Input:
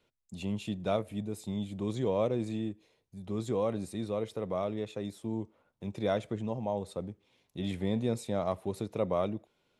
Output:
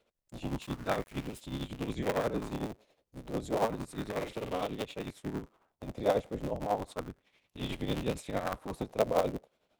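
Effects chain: cycle switcher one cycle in 3, inverted; tremolo 11 Hz, depth 65%; 0.62–1.41 s: small samples zeroed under -49.5 dBFS; 4.16–4.67 s: doubling 48 ms -5 dB; sweeping bell 0.32 Hz 510–3100 Hz +8 dB

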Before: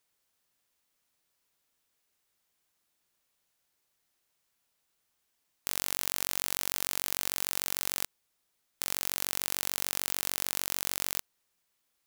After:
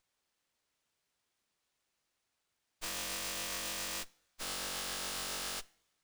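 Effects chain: plain phase-vocoder stretch 0.5×; two-slope reverb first 0.42 s, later 1.7 s, from -18 dB, DRR 19.5 dB; sliding maximum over 3 samples

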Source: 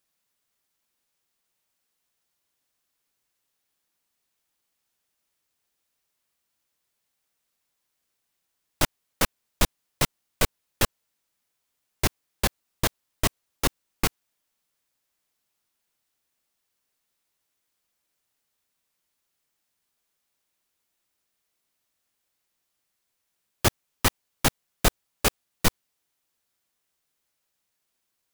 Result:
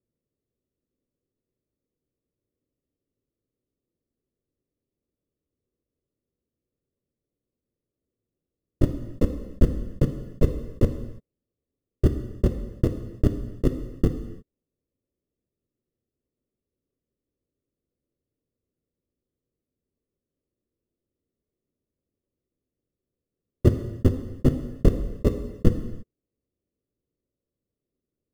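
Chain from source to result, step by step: steep low-pass 500 Hz 36 dB/octave; in parallel at -12 dB: sample-and-hold 28×; on the sum: gated-style reverb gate 360 ms falling, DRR 6.5 dB; trim +5.5 dB

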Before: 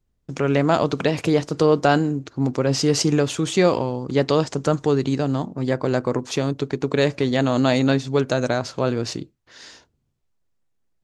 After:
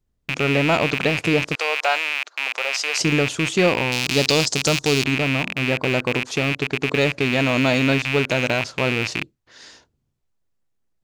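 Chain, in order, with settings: rattle on loud lows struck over -35 dBFS, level -10 dBFS; 1.55–3.00 s: high-pass 630 Hz 24 dB/octave; 3.92–5.04 s: resonant high shelf 3.3 kHz +12 dB, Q 1.5; trim -1 dB

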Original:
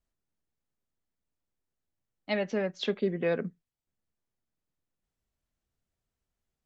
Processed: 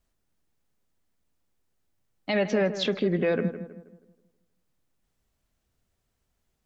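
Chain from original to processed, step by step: peak limiter -25 dBFS, peak gain reduction 9 dB; filtered feedback delay 160 ms, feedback 42%, low-pass 1.9 kHz, level -11 dB; trim +9 dB

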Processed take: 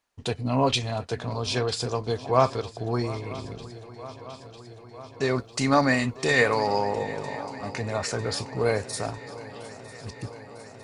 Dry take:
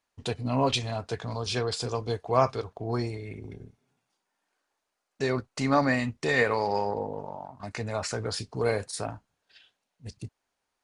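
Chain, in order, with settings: 5.37–7.10 s: treble shelf 4.8 kHz +8.5 dB; shuffle delay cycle 950 ms, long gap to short 3:1, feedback 70%, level -18 dB; trim +2.5 dB

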